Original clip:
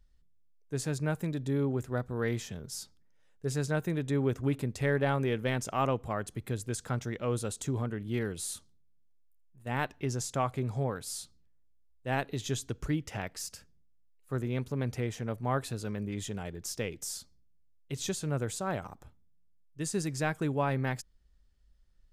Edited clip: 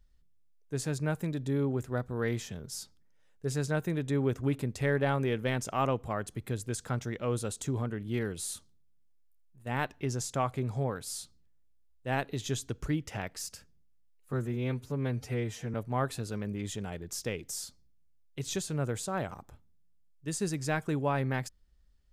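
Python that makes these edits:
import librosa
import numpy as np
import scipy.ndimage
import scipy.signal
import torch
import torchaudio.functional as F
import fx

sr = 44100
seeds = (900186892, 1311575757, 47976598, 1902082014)

y = fx.edit(x, sr, fx.stretch_span(start_s=14.33, length_s=0.94, factor=1.5), tone=tone)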